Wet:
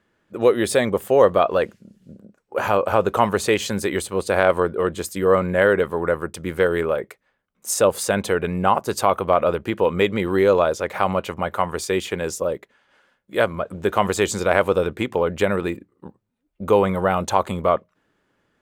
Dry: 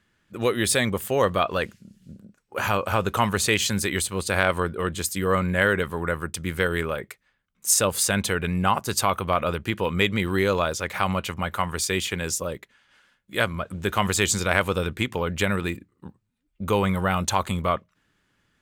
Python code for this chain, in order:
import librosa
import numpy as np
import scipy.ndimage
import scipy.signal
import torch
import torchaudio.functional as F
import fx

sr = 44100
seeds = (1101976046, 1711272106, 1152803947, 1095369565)

y = fx.peak_eq(x, sr, hz=530.0, db=13.5, octaves=2.5)
y = y * 10.0 ** (-5.0 / 20.0)